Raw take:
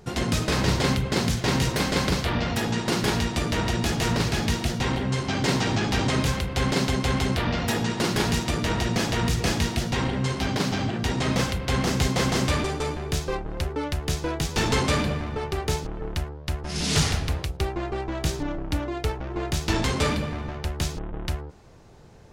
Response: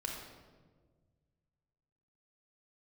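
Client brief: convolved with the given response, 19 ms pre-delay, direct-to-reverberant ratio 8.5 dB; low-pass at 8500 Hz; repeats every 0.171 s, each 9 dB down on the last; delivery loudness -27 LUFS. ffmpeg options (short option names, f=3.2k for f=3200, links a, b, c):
-filter_complex "[0:a]lowpass=8.5k,aecho=1:1:171|342|513|684:0.355|0.124|0.0435|0.0152,asplit=2[a][b];[1:a]atrim=start_sample=2205,adelay=19[c];[b][c]afir=irnorm=-1:irlink=0,volume=-9.5dB[d];[a][d]amix=inputs=2:normalize=0,volume=-2.5dB"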